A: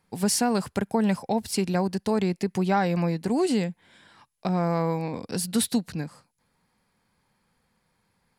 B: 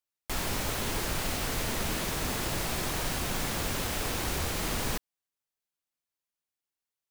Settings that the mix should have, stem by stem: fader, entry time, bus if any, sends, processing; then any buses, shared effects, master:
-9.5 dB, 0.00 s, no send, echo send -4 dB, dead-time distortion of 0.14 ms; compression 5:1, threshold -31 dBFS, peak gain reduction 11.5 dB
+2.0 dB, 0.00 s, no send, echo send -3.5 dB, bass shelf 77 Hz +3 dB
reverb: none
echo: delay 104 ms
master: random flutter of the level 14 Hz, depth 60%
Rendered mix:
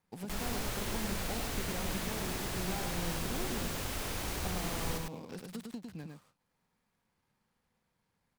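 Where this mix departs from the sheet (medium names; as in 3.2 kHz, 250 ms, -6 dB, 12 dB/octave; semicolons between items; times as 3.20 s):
stem B +2.0 dB -> -7.5 dB; master: missing random flutter of the level 14 Hz, depth 60%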